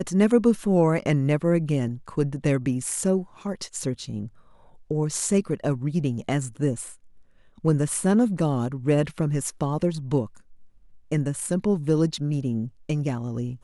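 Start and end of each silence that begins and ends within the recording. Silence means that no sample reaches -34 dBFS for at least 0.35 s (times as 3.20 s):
4.27–4.91 s
6.92–7.64 s
10.26–11.12 s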